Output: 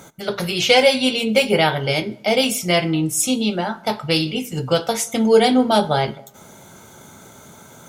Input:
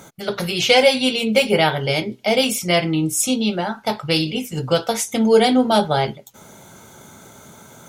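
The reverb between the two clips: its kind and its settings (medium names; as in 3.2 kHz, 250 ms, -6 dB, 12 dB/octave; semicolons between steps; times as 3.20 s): plate-style reverb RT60 0.95 s, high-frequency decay 0.6×, DRR 17 dB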